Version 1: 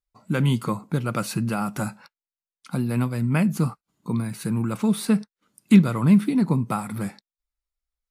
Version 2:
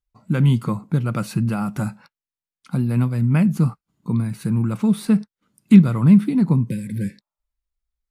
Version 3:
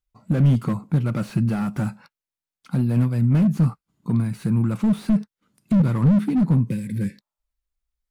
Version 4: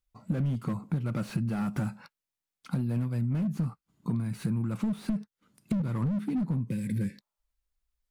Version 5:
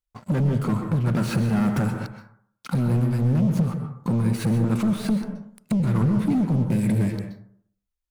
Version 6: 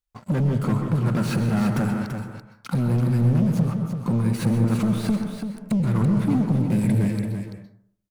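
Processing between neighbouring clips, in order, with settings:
healed spectral selection 0:06.71–0:07.58, 580–1,500 Hz both; bass and treble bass +8 dB, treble −3 dB; level −1.5 dB
slew-rate limiting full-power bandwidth 40 Hz
downward compressor 6 to 1, threshold −27 dBFS, peak gain reduction 14 dB
leveller curve on the samples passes 3; dense smooth reverb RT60 0.61 s, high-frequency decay 0.35×, pre-delay 115 ms, DRR 5.5 dB
single-tap delay 336 ms −7.5 dB

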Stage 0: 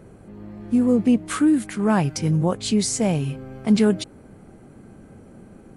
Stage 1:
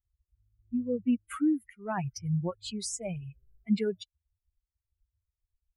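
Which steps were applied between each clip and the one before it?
spectral dynamics exaggerated over time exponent 3
level −6.5 dB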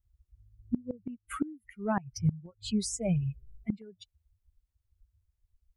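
low-shelf EQ 360 Hz +11.5 dB
gate with flip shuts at −17 dBFS, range −25 dB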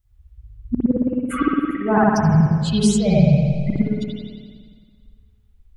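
convolution reverb RT60 1.8 s, pre-delay 54 ms, DRR −8 dB
level +8 dB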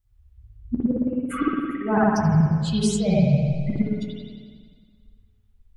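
flanger 0.56 Hz, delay 7.4 ms, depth 6.3 ms, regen −53%

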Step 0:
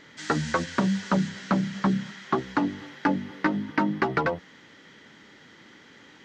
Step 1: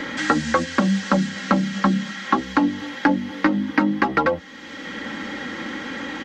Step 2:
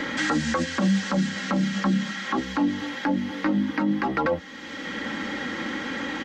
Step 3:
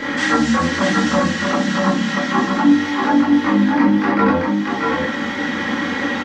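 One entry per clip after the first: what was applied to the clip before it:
comb filter 3.7 ms, depth 70%; multiband upward and downward compressor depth 70%; level +4 dB
brickwall limiter −14.5 dBFS, peak gain reduction 11.5 dB
single-tap delay 636 ms −3.5 dB; convolution reverb RT60 0.40 s, pre-delay 19 ms, DRR −7 dB

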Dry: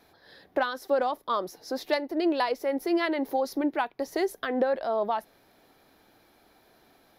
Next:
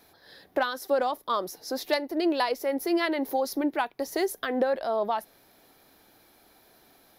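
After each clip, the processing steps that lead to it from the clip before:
high-shelf EQ 5,700 Hz +9.5 dB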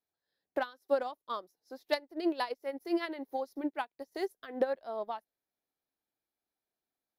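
expander for the loud parts 2.5 to 1, over −42 dBFS
level −2.5 dB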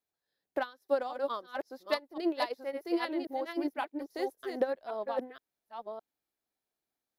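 delay that plays each chunk backwards 545 ms, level −4.5 dB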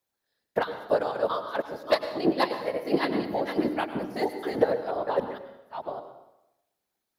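random phases in short frames
dense smooth reverb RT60 0.91 s, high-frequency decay 0.85×, pre-delay 85 ms, DRR 9 dB
level +6 dB

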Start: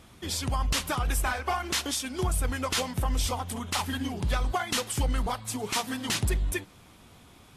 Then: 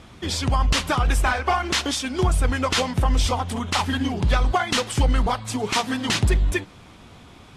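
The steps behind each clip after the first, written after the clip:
high-frequency loss of the air 62 metres
level +8 dB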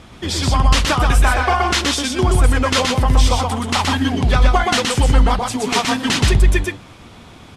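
single-tap delay 123 ms −3 dB
level +4 dB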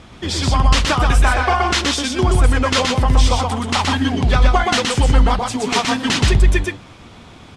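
low-pass filter 9,100 Hz 12 dB per octave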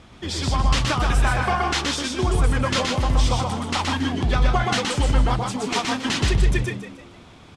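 echo with shifted repeats 154 ms, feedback 37%, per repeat +75 Hz, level −11 dB
level −6 dB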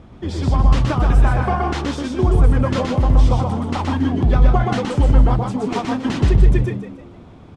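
tilt shelving filter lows +8.5 dB, about 1,300 Hz
level −2 dB

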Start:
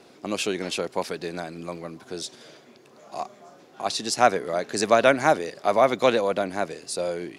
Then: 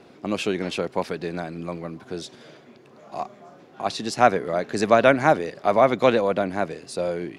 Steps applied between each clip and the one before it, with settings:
bass and treble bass +5 dB, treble −9 dB
level +1.5 dB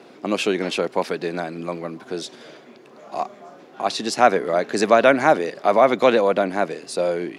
high-pass filter 220 Hz 12 dB per octave
in parallel at −3 dB: brickwall limiter −14 dBFS, peak gain reduction 11 dB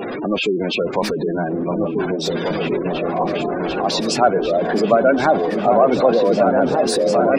converter with a step at zero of −18.5 dBFS
gate on every frequency bin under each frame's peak −15 dB strong
echo whose low-pass opens from repeat to repeat 744 ms, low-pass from 200 Hz, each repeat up 2 octaves, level 0 dB
level −1 dB

